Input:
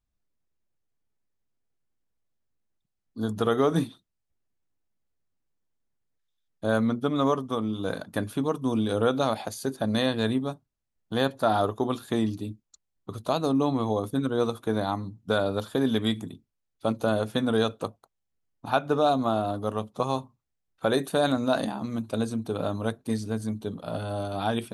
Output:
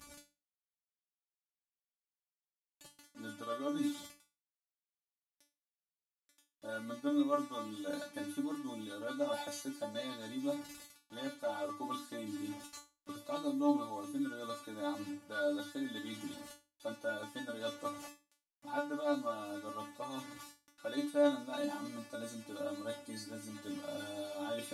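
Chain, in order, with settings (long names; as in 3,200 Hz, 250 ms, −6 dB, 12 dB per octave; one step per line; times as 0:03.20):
linear delta modulator 64 kbit/s, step −39.5 dBFS
reversed playback
downward compressor 5 to 1, threshold −34 dBFS, peak gain reduction 14.5 dB
reversed playback
high-pass filter 91 Hz
mains-hum notches 50/100/150/200/250/300 Hz
tuned comb filter 290 Hz, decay 0.28 s, harmonics all, mix 100%
level +13 dB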